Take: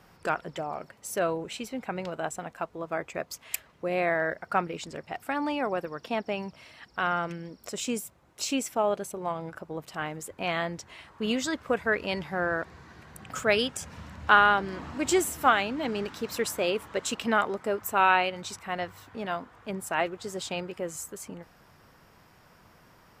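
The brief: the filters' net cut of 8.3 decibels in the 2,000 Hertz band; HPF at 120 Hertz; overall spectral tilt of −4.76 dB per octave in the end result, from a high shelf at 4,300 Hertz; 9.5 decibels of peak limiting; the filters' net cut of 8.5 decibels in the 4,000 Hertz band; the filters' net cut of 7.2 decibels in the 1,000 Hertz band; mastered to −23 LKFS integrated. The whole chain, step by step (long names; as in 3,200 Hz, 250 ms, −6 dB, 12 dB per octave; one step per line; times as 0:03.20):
high-pass filter 120 Hz
parametric band 1,000 Hz −7.5 dB
parametric band 2,000 Hz −6 dB
parametric band 4,000 Hz −5 dB
high-shelf EQ 4,300 Hz −7 dB
level +13 dB
brickwall limiter −9 dBFS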